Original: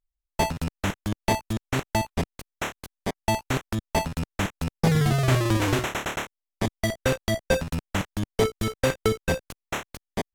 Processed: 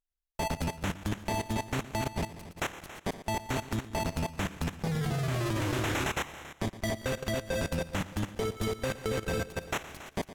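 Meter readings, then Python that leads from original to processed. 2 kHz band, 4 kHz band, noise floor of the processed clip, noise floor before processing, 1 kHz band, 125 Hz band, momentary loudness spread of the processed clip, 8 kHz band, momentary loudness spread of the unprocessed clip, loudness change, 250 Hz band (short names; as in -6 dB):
-5.5 dB, -6.0 dB, -60 dBFS, under -85 dBFS, -6.0 dB, -7.0 dB, 6 LU, -5.5 dB, 12 LU, -6.5 dB, -6.0 dB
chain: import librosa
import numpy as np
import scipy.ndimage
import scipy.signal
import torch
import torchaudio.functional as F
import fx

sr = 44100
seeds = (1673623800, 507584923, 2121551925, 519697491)

y = fx.reverse_delay_fb(x, sr, ms=104, feedback_pct=60, wet_db=-12.5)
y = fx.echo_multitap(y, sr, ms=(115, 277), db=(-12.5, -9.0))
y = fx.level_steps(y, sr, step_db=15)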